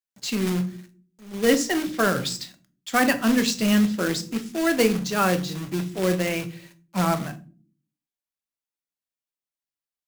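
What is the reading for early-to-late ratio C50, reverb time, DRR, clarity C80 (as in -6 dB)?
16.5 dB, not exponential, 8.5 dB, 21.5 dB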